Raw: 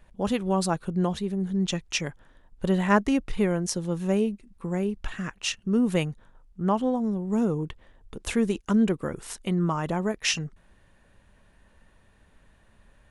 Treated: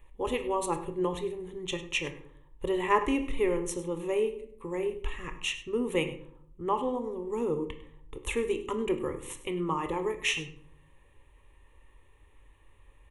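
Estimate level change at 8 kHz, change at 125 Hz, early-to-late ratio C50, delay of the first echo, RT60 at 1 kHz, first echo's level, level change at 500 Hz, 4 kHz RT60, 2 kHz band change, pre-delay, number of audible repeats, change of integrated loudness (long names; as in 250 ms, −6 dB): −6.5 dB, −12.5 dB, 11.0 dB, 101 ms, 0.50 s, −16.5 dB, −0.5 dB, 0.35 s, −2.0 dB, 19 ms, 1, −4.5 dB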